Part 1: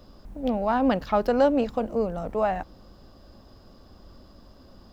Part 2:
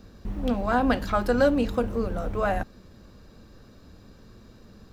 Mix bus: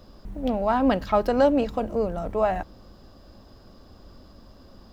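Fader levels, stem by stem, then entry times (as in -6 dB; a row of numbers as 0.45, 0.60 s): +1.0, -11.0 dB; 0.00, 0.00 s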